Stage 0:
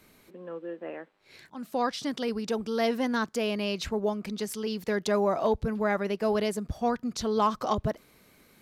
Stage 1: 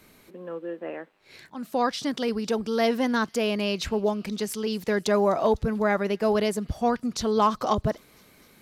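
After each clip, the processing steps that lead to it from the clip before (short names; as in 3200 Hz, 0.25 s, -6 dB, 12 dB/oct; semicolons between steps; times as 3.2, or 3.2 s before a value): thin delay 0.251 s, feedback 69%, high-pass 3300 Hz, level -22 dB; gain +3.5 dB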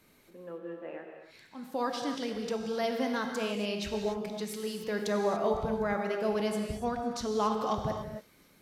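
non-linear reverb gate 0.31 s flat, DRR 2.5 dB; gain -8.5 dB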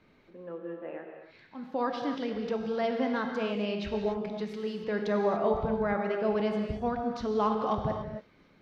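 air absorption 250 m; gain +2.5 dB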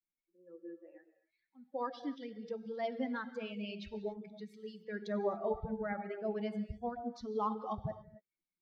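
per-bin expansion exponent 2; gain -4 dB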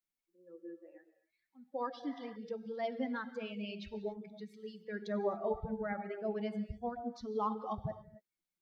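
spectral repair 2.11–2.33, 630–2100 Hz before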